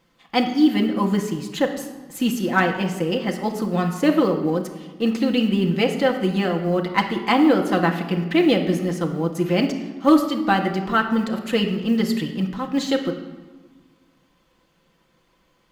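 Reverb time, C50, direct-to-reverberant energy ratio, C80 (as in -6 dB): 1.3 s, 8.0 dB, 2.0 dB, 10.0 dB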